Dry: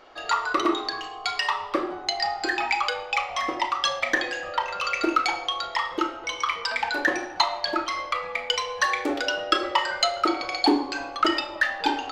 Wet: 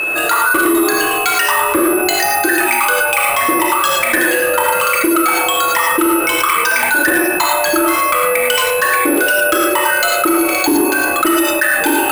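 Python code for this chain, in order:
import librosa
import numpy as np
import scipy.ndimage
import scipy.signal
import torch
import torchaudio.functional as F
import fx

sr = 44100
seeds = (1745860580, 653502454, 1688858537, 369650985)

y = fx.rev_gated(x, sr, seeds[0], gate_ms=130, shape='rising', drr_db=0.5)
y = fx.rider(y, sr, range_db=10, speed_s=0.5)
y = fx.small_body(y, sr, hz=(330.0, 1500.0), ring_ms=45, db=11)
y = (np.kron(y[::4], np.eye(4)[0]) * 4)[:len(y)]
y = fx.bass_treble(y, sr, bass_db=-3, treble_db=-15)
y = y + 10.0 ** (-35.0 / 20.0) * np.sin(2.0 * np.pi * 2600.0 * np.arange(len(y)) / sr)
y = fx.graphic_eq_31(y, sr, hz=(160, 315, 800, 8000), db=(9, -4, -6, 4))
y = fx.cheby_harmonics(y, sr, harmonics=(5,), levels_db=(-7,), full_scale_db=-1.0)
y = fx.env_flatten(y, sr, amount_pct=70)
y = F.gain(torch.from_numpy(y), -5.0).numpy()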